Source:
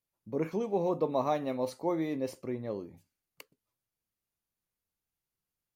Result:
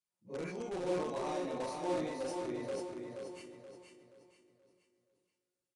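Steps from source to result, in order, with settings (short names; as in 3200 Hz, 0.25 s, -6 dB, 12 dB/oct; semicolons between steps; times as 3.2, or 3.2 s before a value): phase scrambler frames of 0.1 s; HPF 120 Hz 6 dB/oct; high shelf 3800 Hz +6.5 dB; resonator 180 Hz, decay 0.35 s, harmonics all, mix 80%; in parallel at -9 dB: wrapped overs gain 36 dB; on the sum: feedback echo 0.477 s, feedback 37%, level -5 dB; on a send at -13 dB: reverb RT60 3.0 s, pre-delay 3 ms; on the sum: downsampling 22050 Hz; sustainer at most 43 dB/s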